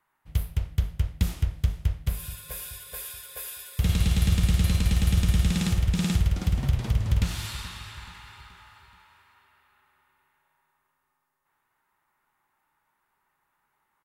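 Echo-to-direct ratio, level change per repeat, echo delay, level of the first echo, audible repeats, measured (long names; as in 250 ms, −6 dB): −15.5 dB, −7.0 dB, 428 ms, −16.5 dB, 3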